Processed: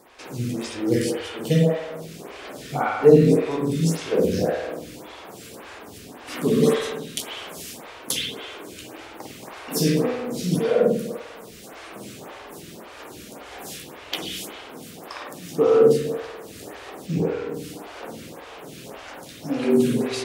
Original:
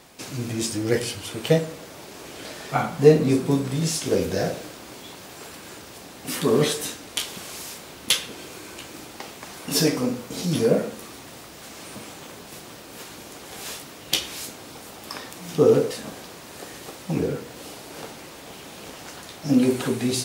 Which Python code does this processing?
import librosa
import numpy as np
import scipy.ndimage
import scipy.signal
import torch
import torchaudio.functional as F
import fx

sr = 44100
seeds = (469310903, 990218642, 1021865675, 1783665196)

y = fx.peak_eq(x, sr, hz=11000.0, db=-13.0, octaves=0.46, at=(17.06, 17.54))
y = fx.rev_spring(y, sr, rt60_s=1.1, pass_ms=(49,), chirp_ms=75, drr_db=-2.0)
y = fx.stagger_phaser(y, sr, hz=1.8)